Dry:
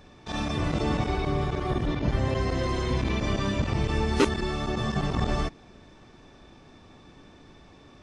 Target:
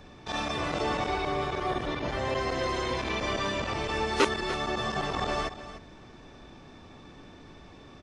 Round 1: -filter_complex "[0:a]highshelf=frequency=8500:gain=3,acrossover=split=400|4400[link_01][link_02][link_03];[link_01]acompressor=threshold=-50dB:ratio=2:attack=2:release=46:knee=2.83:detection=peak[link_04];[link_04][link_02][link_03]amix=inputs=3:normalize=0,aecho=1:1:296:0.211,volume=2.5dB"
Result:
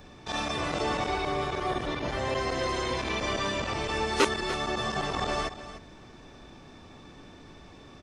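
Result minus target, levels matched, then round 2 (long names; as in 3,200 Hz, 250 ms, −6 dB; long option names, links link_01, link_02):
8,000 Hz band +3.0 dB
-filter_complex "[0:a]highshelf=frequency=8500:gain=-6,acrossover=split=400|4400[link_01][link_02][link_03];[link_01]acompressor=threshold=-50dB:ratio=2:attack=2:release=46:knee=2.83:detection=peak[link_04];[link_04][link_02][link_03]amix=inputs=3:normalize=0,aecho=1:1:296:0.211,volume=2.5dB"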